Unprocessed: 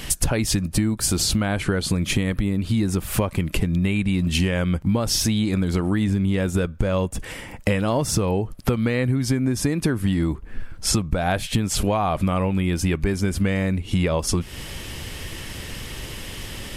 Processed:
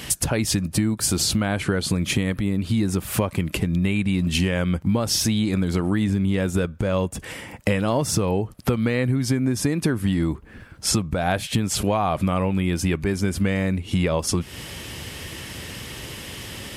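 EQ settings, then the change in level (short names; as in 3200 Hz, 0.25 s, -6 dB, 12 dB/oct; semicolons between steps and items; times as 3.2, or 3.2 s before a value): HPF 76 Hz; 0.0 dB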